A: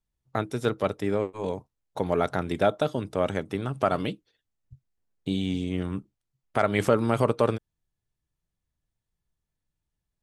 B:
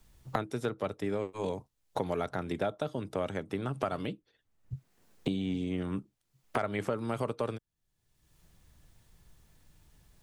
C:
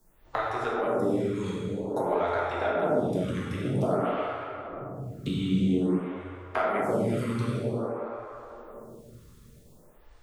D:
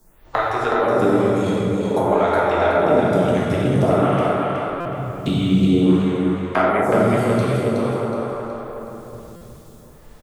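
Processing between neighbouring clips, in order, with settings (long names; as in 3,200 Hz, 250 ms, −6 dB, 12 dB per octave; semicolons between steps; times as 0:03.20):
multiband upward and downward compressor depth 100%; level −8 dB
dense smooth reverb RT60 3.9 s, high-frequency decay 0.45×, DRR −7 dB; phaser with staggered stages 0.51 Hz; level +1.5 dB
on a send: repeating echo 370 ms, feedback 39%, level −4.5 dB; on the sum: buffer that repeats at 0:04.80/0:09.36, samples 256, times 8; level +9 dB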